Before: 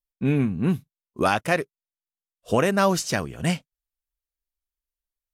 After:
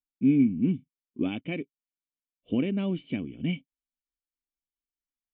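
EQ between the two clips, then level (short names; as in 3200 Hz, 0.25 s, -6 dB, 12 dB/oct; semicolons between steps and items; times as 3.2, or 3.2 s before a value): vocal tract filter i; low shelf 120 Hz -7 dB; +6.0 dB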